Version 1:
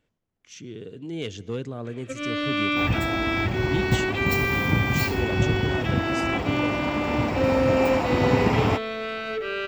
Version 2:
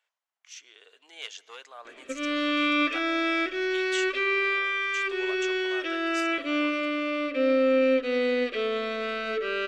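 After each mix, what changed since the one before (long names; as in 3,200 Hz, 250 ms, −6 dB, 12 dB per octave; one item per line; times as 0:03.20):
speech: add high-pass filter 790 Hz 24 dB per octave
second sound: muted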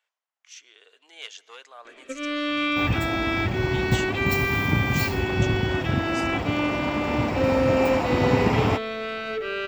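second sound: unmuted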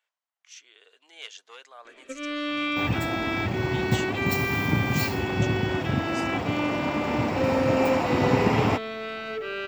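second sound: add high-pass filter 100 Hz
reverb: off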